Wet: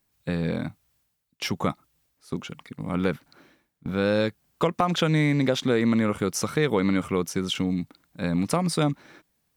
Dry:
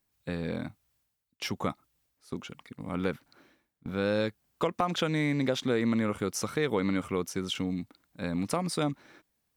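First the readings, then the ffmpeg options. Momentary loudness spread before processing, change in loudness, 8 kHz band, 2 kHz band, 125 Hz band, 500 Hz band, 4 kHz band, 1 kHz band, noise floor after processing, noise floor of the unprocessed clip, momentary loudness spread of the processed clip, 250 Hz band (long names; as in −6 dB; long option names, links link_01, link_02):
14 LU, +5.5 dB, +5.0 dB, +5.0 dB, +7.5 dB, +5.0 dB, +5.0 dB, +5.0 dB, −74 dBFS, −79 dBFS, 14 LU, +6.0 dB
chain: -af "equalizer=frequency=160:width_type=o:width=0.33:gain=5,volume=5dB"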